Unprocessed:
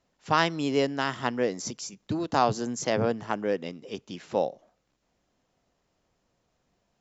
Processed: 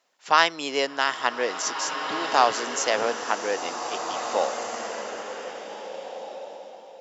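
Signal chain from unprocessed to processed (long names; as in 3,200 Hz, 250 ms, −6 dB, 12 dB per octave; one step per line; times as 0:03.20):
Bessel high-pass filter 780 Hz, order 2
slow-attack reverb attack 1,940 ms, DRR 5.5 dB
level +7 dB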